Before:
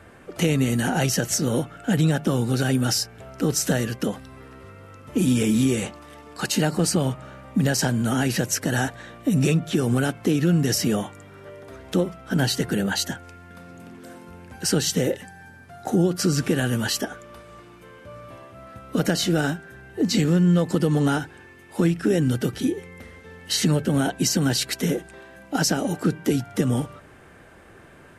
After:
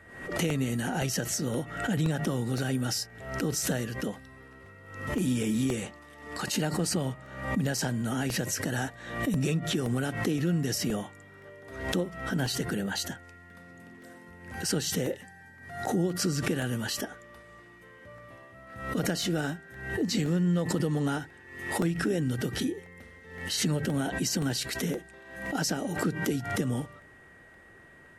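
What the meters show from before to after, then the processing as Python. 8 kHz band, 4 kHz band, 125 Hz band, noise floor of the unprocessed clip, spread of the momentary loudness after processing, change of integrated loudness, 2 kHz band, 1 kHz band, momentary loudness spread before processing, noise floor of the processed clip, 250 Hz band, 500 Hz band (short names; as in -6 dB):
-6.5 dB, -6.5 dB, -7.5 dB, -48 dBFS, 20 LU, -7.5 dB, -4.5 dB, -5.5 dB, 16 LU, -53 dBFS, -7.5 dB, -7.0 dB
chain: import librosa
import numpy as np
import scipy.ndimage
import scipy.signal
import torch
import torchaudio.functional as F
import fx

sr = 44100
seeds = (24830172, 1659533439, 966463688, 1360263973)

y = x + 10.0 ** (-46.0 / 20.0) * np.sin(2.0 * np.pi * 1900.0 * np.arange(len(x)) / sr)
y = fx.buffer_crackle(y, sr, first_s=0.5, period_s=0.52, block=64, kind='repeat')
y = fx.pre_swell(y, sr, db_per_s=72.0)
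y = F.gain(torch.from_numpy(y), -8.0).numpy()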